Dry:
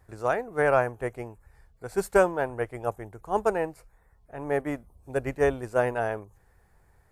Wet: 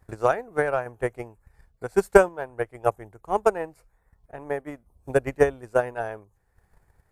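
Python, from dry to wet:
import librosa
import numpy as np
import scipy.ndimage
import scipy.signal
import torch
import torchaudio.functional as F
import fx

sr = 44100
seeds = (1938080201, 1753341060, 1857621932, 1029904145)

y = fx.transient(x, sr, attack_db=11, sustain_db=-3)
y = fx.tremolo_random(y, sr, seeds[0], hz=3.5, depth_pct=55)
y = F.gain(torch.from_numpy(y), -1.5).numpy()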